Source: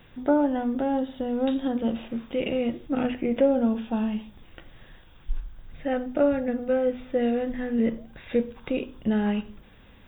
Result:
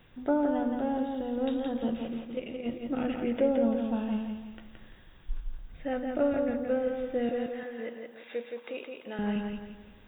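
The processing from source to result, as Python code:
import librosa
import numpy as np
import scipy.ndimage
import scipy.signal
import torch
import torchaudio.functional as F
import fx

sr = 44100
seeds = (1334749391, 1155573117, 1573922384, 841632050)

y = fx.level_steps(x, sr, step_db=12, at=(2.2, 2.64), fade=0.02)
y = fx.highpass(y, sr, hz=540.0, slope=12, at=(7.29, 9.19))
y = fx.echo_feedback(y, sr, ms=170, feedback_pct=39, wet_db=-4.5)
y = y * 10.0 ** (-5.5 / 20.0)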